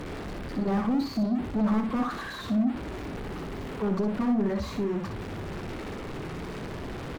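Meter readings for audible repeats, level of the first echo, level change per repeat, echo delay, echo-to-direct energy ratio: 2, -6.5 dB, -14.5 dB, 61 ms, -6.5 dB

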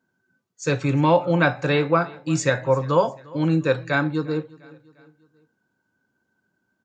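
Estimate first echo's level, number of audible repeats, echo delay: -23.0 dB, 2, 0.351 s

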